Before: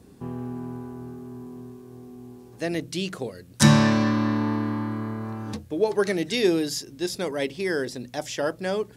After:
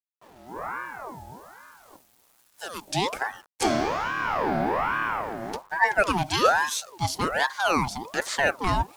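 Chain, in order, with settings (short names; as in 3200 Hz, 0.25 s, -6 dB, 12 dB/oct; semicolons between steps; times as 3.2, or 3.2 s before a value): 1.96–2.88 pre-emphasis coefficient 0.8; hum 50 Hz, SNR 20 dB; AGC gain up to 12 dB; 5.21–5.79 power-law curve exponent 1.4; spectral noise reduction 13 dB; notches 50/100/150/200/250 Hz; bit-crush 8-bit; ring modulator with a swept carrier 900 Hz, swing 50%, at 1.2 Hz; gain -5 dB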